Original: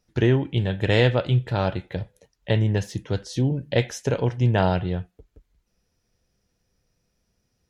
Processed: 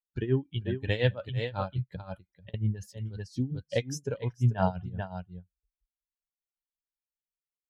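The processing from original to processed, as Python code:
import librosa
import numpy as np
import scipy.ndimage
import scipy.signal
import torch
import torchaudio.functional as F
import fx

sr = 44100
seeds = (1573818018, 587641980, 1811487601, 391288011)

y = fx.bin_expand(x, sr, power=2.0)
y = y + 10.0 ** (-9.0 / 20.0) * np.pad(y, (int(441 * sr / 1000.0), 0))[:len(y)]
y = fx.over_compress(y, sr, threshold_db=-36.0, ratio=-0.5, at=(1.88, 2.54))
y = y * (1.0 - 0.84 / 2.0 + 0.84 / 2.0 * np.cos(2.0 * np.pi * 5.6 * (np.arange(len(y)) / sr)))
y = y * librosa.db_to_amplitude(-1.0)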